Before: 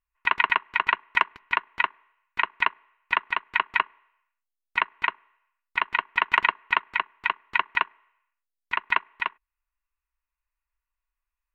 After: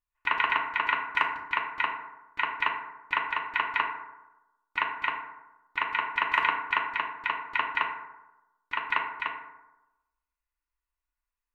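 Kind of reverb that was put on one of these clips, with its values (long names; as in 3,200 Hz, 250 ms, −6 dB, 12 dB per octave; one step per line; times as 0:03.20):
feedback delay network reverb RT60 1 s, low-frequency decay 1×, high-frequency decay 0.4×, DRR 0 dB
level −5.5 dB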